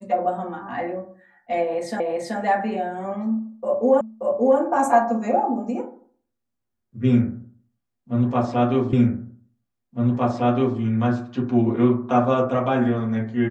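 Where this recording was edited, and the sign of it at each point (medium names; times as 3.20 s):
2.00 s: repeat of the last 0.38 s
4.01 s: repeat of the last 0.58 s
8.93 s: repeat of the last 1.86 s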